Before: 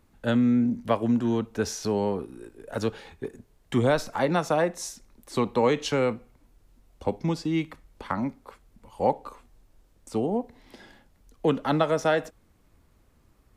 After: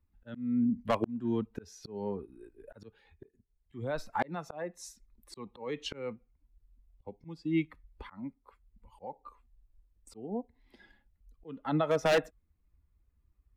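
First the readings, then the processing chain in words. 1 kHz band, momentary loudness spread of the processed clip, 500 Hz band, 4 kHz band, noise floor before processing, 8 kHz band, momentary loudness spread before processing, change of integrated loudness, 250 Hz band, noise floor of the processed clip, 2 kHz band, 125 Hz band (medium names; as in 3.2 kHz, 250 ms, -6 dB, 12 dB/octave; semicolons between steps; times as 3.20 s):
-9.0 dB, 22 LU, -9.0 dB, -7.5 dB, -63 dBFS, -12.0 dB, 15 LU, -7.5 dB, -8.5 dB, -74 dBFS, -7.0 dB, -10.5 dB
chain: expander on every frequency bin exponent 1.5; tone controls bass 0 dB, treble -10 dB; peak limiter -19 dBFS, peak gain reduction 6.5 dB; slow attack 723 ms; wavefolder -24.5 dBFS; trim +6 dB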